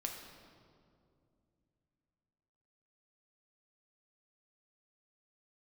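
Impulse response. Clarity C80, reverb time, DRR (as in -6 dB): 5.5 dB, 2.4 s, 1.5 dB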